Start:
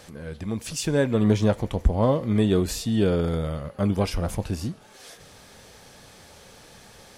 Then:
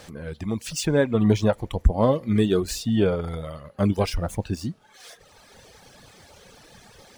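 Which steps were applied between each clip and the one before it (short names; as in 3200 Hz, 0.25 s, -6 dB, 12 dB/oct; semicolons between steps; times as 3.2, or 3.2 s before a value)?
median filter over 3 samples; reverb removal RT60 1.6 s; gain +2.5 dB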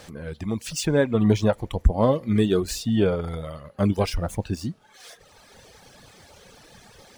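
nothing audible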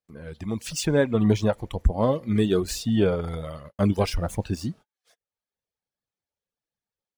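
gate -41 dBFS, range -45 dB; AGC gain up to 5 dB; gain -5 dB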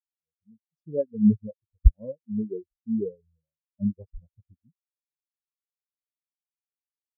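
spectral expander 4:1; gain +5 dB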